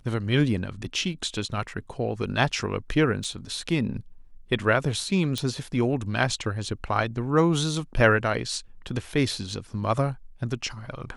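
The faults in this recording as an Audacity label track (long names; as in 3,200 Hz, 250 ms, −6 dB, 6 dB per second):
3.240000	3.240000	drop-out 4.1 ms
5.380000	5.380000	click −14 dBFS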